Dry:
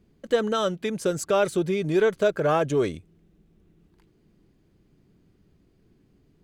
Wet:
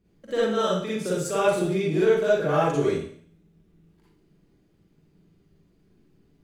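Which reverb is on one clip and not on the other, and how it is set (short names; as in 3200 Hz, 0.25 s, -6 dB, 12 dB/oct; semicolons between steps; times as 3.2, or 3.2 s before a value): Schroeder reverb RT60 0.56 s, DRR -8 dB; gain -8.5 dB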